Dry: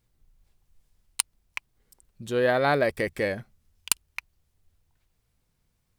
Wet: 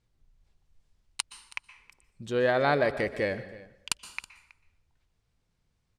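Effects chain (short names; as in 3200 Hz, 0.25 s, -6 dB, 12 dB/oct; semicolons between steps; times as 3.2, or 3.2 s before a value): LPF 6900 Hz 12 dB/oct; on a send: echo 0.323 s -20.5 dB; on the sum: plate-style reverb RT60 0.75 s, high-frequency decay 0.75×, pre-delay 0.11 s, DRR 13.5 dB; gain -2 dB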